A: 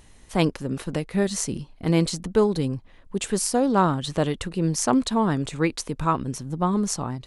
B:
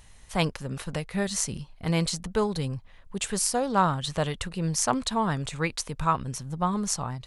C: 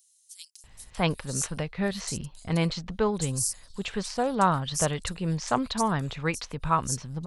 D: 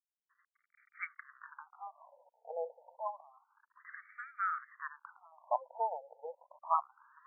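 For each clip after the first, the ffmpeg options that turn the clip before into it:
ffmpeg -i in.wav -af "equalizer=frequency=310:width=1.2:gain=-11.5" out.wav
ffmpeg -i in.wav -filter_complex "[0:a]acrossover=split=5000[link_01][link_02];[link_01]adelay=640[link_03];[link_03][link_02]amix=inputs=2:normalize=0" out.wav
ffmpeg -i in.wav -af "aeval=exprs='val(0)*gte(abs(val(0)),0.00562)':channel_layout=same,afftfilt=real='re*between(b*sr/1024,640*pow(1700/640,0.5+0.5*sin(2*PI*0.29*pts/sr))/1.41,640*pow(1700/640,0.5+0.5*sin(2*PI*0.29*pts/sr))*1.41)':imag='im*between(b*sr/1024,640*pow(1700/640,0.5+0.5*sin(2*PI*0.29*pts/sr))/1.41,640*pow(1700/640,0.5+0.5*sin(2*PI*0.29*pts/sr))*1.41)':win_size=1024:overlap=0.75,volume=-4.5dB" out.wav

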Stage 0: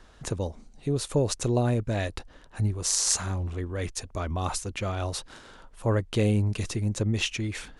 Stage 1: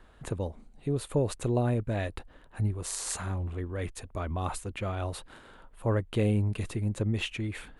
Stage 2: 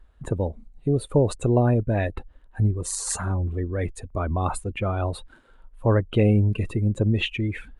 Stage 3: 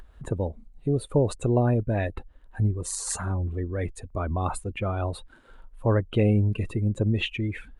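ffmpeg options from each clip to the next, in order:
ffmpeg -i in.wav -af "equalizer=frequency=5700:width_type=o:width=0.81:gain=-14,volume=-2.5dB" out.wav
ffmpeg -i in.wav -af "afftdn=noise_reduction=17:noise_floor=-41,volume=7.5dB" out.wav
ffmpeg -i in.wav -af "acompressor=mode=upward:threshold=-36dB:ratio=2.5,volume=-2.5dB" out.wav

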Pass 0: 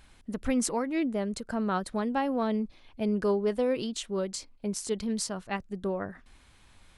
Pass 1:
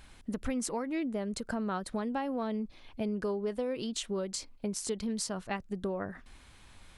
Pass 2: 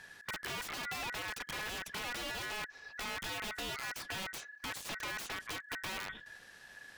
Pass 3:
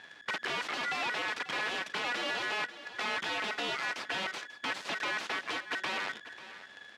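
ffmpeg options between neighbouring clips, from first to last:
ffmpeg -i in.wav -af "acompressor=threshold=-34dB:ratio=4,volume=2.5dB" out.wav
ffmpeg -i in.wav -filter_complex "[0:a]aeval=exprs='(mod(39.8*val(0)+1,2)-1)/39.8':channel_layout=same,acrossover=split=1800|4500[link_01][link_02][link_03];[link_01]acompressor=threshold=-39dB:ratio=4[link_04];[link_02]acompressor=threshold=-44dB:ratio=4[link_05];[link_03]acompressor=threshold=-47dB:ratio=4[link_06];[link_04][link_05][link_06]amix=inputs=3:normalize=0,aeval=exprs='val(0)*sin(2*PI*1700*n/s)':channel_layout=same,volume=2.5dB" out.wav
ffmpeg -i in.wav -af "acrusher=bits=8:dc=4:mix=0:aa=0.000001,highpass=250,lowpass=4000,aecho=1:1:540:0.178,volume=7dB" out.wav

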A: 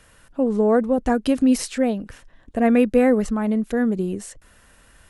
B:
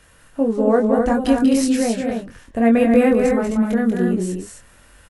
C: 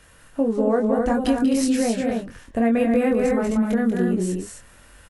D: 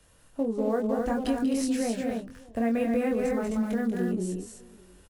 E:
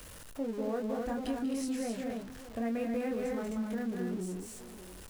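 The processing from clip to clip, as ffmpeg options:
ffmpeg -i in.wav -filter_complex "[0:a]asplit=2[link_01][link_02];[link_02]adelay=22,volume=-4dB[link_03];[link_01][link_03]amix=inputs=2:normalize=0,asplit=2[link_04][link_05];[link_05]aecho=0:1:189.5|259.5:0.501|0.562[link_06];[link_04][link_06]amix=inputs=2:normalize=0" out.wav
ffmpeg -i in.wav -af "acompressor=threshold=-17dB:ratio=3" out.wav
ffmpeg -i in.wav -filter_complex "[0:a]acrossover=split=170|1300|2300[link_01][link_02][link_03][link_04];[link_02]aecho=1:1:603:0.075[link_05];[link_03]acrusher=bits=7:mix=0:aa=0.000001[link_06];[link_01][link_05][link_06][link_04]amix=inputs=4:normalize=0,volume=-7dB" out.wav
ffmpeg -i in.wav -af "aeval=exprs='val(0)+0.5*0.0168*sgn(val(0))':channel_layout=same,volume=-8.5dB" out.wav

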